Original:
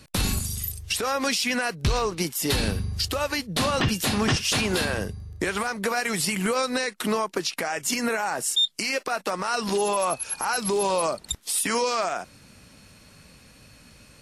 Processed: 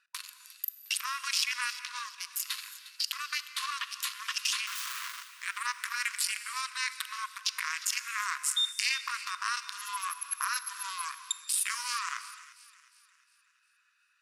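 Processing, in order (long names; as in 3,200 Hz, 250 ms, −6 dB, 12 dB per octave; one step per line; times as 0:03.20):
adaptive Wiener filter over 41 samples
in parallel at +3 dB: compressor whose output falls as the input rises −31 dBFS, ratio −0.5
0:04.67–0:05.23: on the sum: wrap-around overflow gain 25 dB
linear-phase brick-wall high-pass 970 Hz
on a send: delay with a high-pass on its return 356 ms, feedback 45%, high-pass 1,700 Hz, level −16 dB
on the sum: reverb whose tail is shaped and stops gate 370 ms flat, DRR 11.5 dB
level −6.5 dB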